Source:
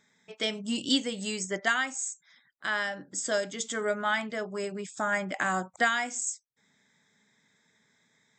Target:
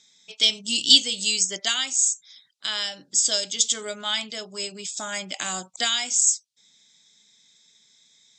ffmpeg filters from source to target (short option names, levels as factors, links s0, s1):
-af "aexciter=amount=13.9:drive=3.1:freq=2700,lowpass=5600,volume=0.596"